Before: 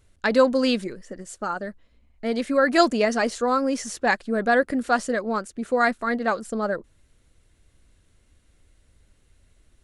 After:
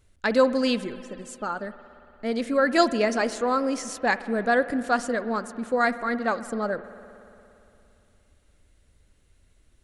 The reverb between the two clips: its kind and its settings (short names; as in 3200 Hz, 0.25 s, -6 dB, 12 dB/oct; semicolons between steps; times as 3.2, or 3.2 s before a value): spring tank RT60 2.9 s, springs 57 ms, chirp 70 ms, DRR 13.5 dB; gain -2 dB